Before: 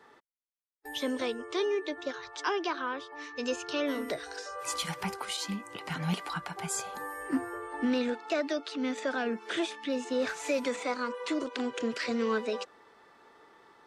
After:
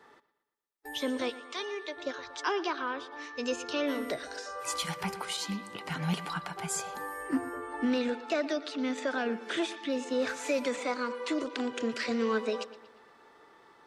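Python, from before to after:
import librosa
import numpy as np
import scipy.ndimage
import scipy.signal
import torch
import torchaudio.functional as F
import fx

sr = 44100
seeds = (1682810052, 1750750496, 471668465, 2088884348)

p1 = fx.highpass(x, sr, hz=fx.line((1.29, 1100.0), (1.95, 510.0)), slope=12, at=(1.29, 1.95), fade=0.02)
y = p1 + fx.echo_bbd(p1, sr, ms=117, stages=4096, feedback_pct=48, wet_db=-16.5, dry=0)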